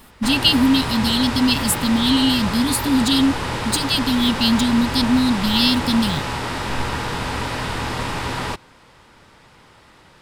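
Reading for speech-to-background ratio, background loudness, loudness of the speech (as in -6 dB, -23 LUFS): 7.0 dB, -25.0 LUFS, -18.0 LUFS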